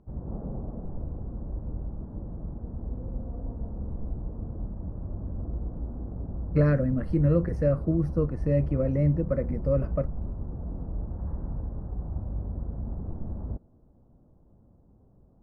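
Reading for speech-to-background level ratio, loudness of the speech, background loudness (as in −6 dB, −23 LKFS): 10.0 dB, −26.5 LKFS, −36.5 LKFS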